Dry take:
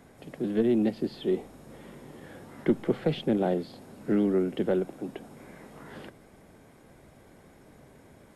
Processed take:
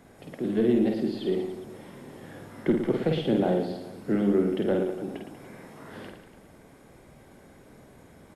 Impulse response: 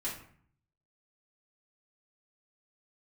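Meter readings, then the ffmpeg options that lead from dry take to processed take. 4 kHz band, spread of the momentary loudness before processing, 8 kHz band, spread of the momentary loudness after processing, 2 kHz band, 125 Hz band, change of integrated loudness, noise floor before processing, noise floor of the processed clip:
+2.0 dB, 22 LU, no reading, 21 LU, +2.0 dB, +2.5 dB, +1.5 dB, -56 dBFS, -53 dBFS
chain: -af "aecho=1:1:50|112.5|190.6|288.3|410.4:0.631|0.398|0.251|0.158|0.1"

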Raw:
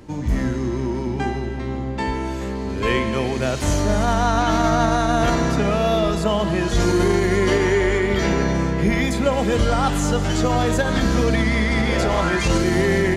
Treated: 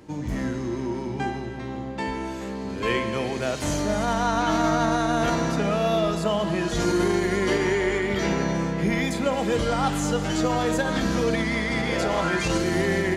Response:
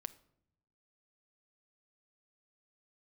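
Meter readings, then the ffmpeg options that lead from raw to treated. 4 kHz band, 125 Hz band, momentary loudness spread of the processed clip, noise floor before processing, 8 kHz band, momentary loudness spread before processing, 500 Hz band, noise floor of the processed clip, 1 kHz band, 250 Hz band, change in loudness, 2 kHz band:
-3.5 dB, -7.0 dB, 8 LU, -26 dBFS, -3.5 dB, 7 LU, -4.0 dB, -32 dBFS, -4.0 dB, -4.0 dB, -4.5 dB, -3.5 dB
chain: -filter_complex "[0:a]lowshelf=f=66:g=-12[s0];[1:a]atrim=start_sample=2205[s1];[s0][s1]afir=irnorm=-1:irlink=0"

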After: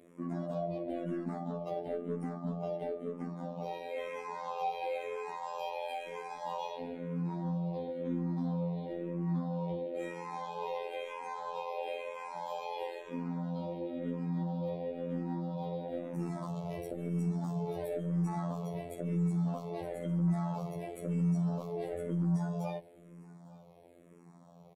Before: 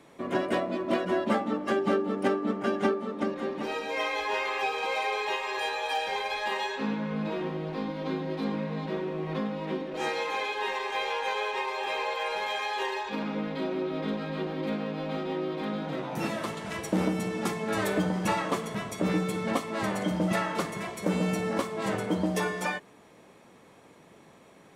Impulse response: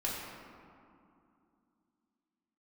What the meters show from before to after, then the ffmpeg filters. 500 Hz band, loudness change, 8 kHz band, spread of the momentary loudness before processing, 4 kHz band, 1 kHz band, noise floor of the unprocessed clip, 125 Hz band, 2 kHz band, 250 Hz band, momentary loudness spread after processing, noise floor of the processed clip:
-7.5 dB, -6.5 dB, under -15 dB, 5 LU, -17.5 dB, -9.0 dB, -55 dBFS, +1.5 dB, -18.0 dB, -5.0 dB, 8 LU, -57 dBFS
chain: -filter_complex "[0:a]afftfilt=real='hypot(re,im)*cos(PI*b)':imag='0':win_size=2048:overlap=0.75,equalizer=f=3700:t=o:w=1.7:g=-11.5,alimiter=limit=0.0794:level=0:latency=1:release=97,equalizer=f=160:t=o:w=0.67:g=9,equalizer=f=630:t=o:w=0.67:g=6,equalizer=f=1600:t=o:w=0.67:g=-6,equalizer=f=4000:t=o:w=0.67:g=4,asoftclip=type=tanh:threshold=0.0794,asplit=2[s0][s1];[s1]aecho=0:1:853:0.0794[s2];[s0][s2]amix=inputs=2:normalize=0,asplit=2[s3][s4];[s4]afreqshift=-1[s5];[s3][s5]amix=inputs=2:normalize=1"

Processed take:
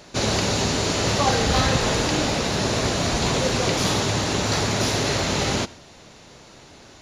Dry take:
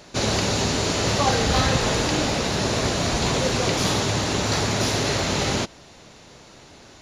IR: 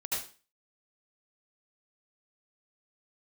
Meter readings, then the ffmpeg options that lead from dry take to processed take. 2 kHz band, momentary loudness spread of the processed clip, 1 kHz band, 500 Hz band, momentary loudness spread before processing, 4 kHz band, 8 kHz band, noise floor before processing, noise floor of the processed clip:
+0.5 dB, 3 LU, +0.5 dB, +0.5 dB, 3 LU, +0.5 dB, +0.5 dB, -48 dBFS, -47 dBFS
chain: -filter_complex "[0:a]asplit=2[s0][s1];[1:a]atrim=start_sample=2205[s2];[s1][s2]afir=irnorm=-1:irlink=0,volume=0.0596[s3];[s0][s3]amix=inputs=2:normalize=0"

